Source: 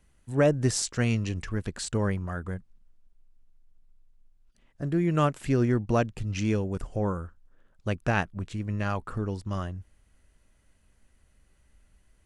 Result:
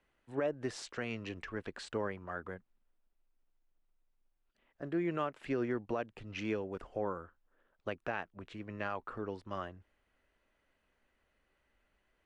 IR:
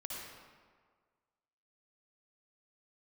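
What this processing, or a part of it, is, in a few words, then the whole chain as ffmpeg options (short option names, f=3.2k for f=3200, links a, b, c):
DJ mixer with the lows and highs turned down: -filter_complex "[0:a]acrossover=split=290 3800:gain=0.158 1 0.112[a][b][c];[a][b][c]amix=inputs=3:normalize=0,alimiter=limit=-21.5dB:level=0:latency=1:release=272,volume=-3dB"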